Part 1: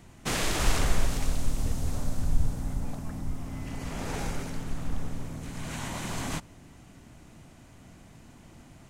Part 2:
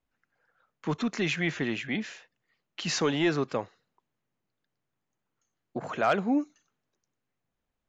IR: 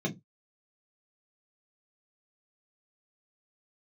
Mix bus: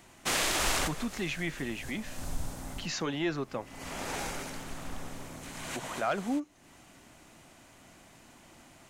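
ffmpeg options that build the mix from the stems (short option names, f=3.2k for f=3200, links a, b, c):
-filter_complex "[0:a]bass=f=250:g=-12,treble=f=4k:g=-5,acontrast=78,highshelf=f=3.7k:g=8,volume=-6.5dB[a];[1:a]volume=-5.5dB,asplit=2[b][c];[c]apad=whole_len=392259[d];[a][d]sidechaincompress=threshold=-43dB:ratio=10:attack=42:release=308[e];[e][b]amix=inputs=2:normalize=0,bandreject=f=450:w=12"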